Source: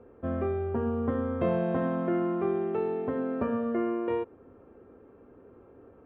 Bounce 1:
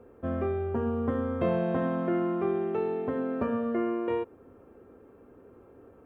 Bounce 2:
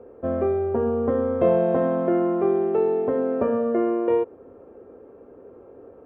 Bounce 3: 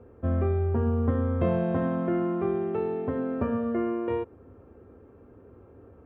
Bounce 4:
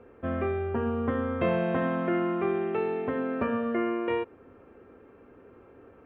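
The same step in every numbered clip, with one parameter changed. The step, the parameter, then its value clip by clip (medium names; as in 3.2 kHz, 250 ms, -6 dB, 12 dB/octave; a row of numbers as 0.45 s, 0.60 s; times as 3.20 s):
peaking EQ, frequency: 16 kHz, 530 Hz, 79 Hz, 2.4 kHz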